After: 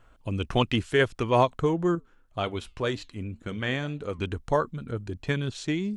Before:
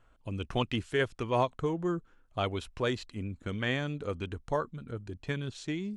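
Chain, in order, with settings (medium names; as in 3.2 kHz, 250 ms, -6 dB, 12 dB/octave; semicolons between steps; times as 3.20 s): 1.95–4.19 s: flange 1.9 Hz, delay 4.8 ms, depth 3.2 ms, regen -83%; trim +6.5 dB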